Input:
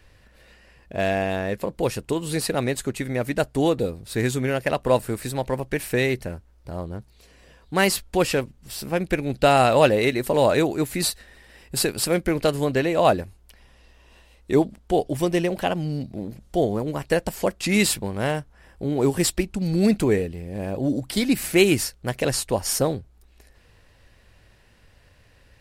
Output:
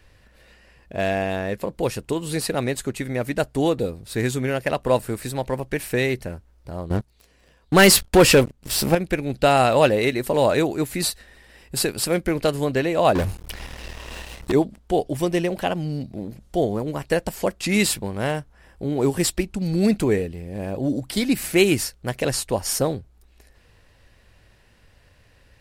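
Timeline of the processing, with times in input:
6.9–8.95 sample leveller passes 3
13.15–14.52 sample leveller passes 5

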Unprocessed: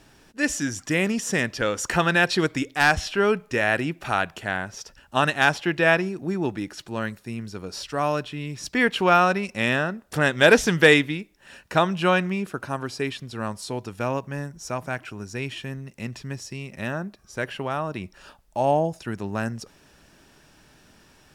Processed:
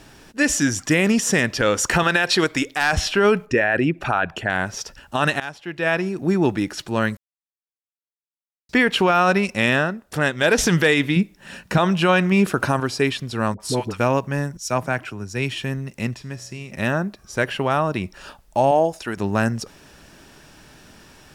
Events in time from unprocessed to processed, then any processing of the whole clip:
2.03–2.93 bell 120 Hz -7.5 dB 2.8 oct
3.45–4.5 formant sharpening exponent 1.5
5.4–6.28 fade in quadratic, from -21 dB
7.17–8.69 mute
9.47–10.58 fade out quadratic, to -8 dB
11.16–11.78 bell 180 Hz +11 dB 0.8 oct
12.32–12.8 gain +6 dB
13.54–14 dispersion highs, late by 62 ms, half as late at 710 Hz
14.57–15.61 three-band expander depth 70%
16.14–16.71 resonator 62 Hz, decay 1.2 s
18.71–19.17 bell 130 Hz -12.5 dB 1.7 oct
whole clip: limiter -15.5 dBFS; gain +7.5 dB

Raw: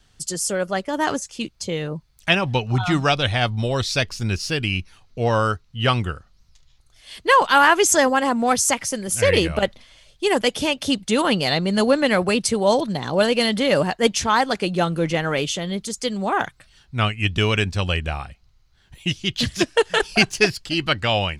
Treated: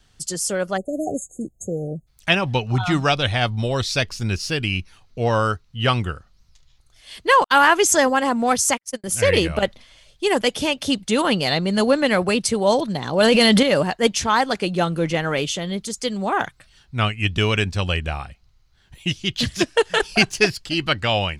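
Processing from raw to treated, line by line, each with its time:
0.77–2.07 spectral delete 790–6400 Hz
7.44–9.04 gate -25 dBFS, range -53 dB
13.2–13.63 fast leveller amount 100%

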